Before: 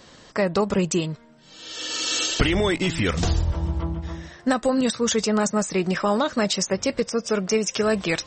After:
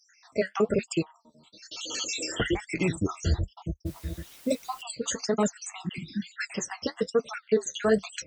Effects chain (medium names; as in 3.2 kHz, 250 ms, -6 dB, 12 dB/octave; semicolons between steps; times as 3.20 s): random holes in the spectrogram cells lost 69%; high-pass 40 Hz 24 dB/octave; 5.82–6.22 s: spectral replace 360–1500 Hz both; dynamic bell 440 Hz, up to +4 dB, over -41 dBFS, Q 5.5; flange 1.1 Hz, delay 4.8 ms, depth 8.5 ms, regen -48%; 3.85–4.81 s: added noise white -54 dBFS; 5.89–6.34 s: phase dispersion lows, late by 92 ms, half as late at 510 Hz; trim +2 dB